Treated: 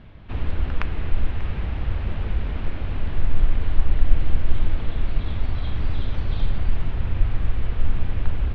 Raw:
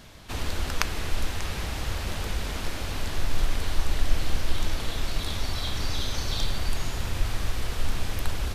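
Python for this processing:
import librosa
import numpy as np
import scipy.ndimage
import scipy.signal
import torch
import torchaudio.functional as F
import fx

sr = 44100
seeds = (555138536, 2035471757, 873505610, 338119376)

y = scipy.signal.sosfilt(scipy.signal.butter(4, 3000.0, 'lowpass', fs=sr, output='sos'), x)
y = fx.low_shelf(y, sr, hz=310.0, db=11.0)
y = y * 10.0 ** (-4.0 / 20.0)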